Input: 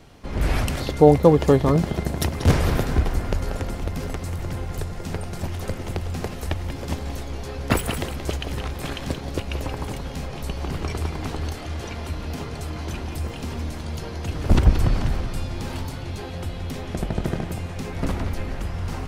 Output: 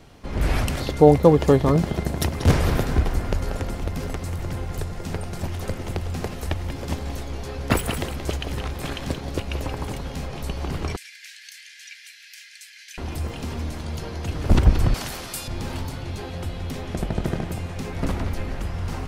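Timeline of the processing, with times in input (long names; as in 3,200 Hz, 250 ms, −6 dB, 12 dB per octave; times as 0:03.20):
0:10.96–0:12.98: Chebyshev high-pass with heavy ripple 1,600 Hz, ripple 3 dB
0:14.94–0:15.48: RIAA equalisation recording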